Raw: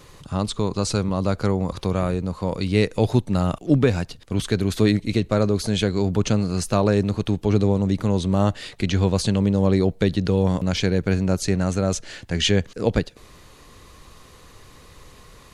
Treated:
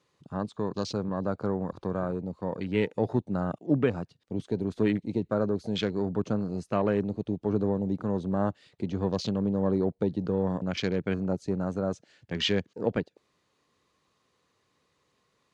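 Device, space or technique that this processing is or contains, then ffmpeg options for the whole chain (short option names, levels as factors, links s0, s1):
over-cleaned archive recording: -af "highpass=150,lowpass=7500,afwtdn=0.0251,volume=0.501"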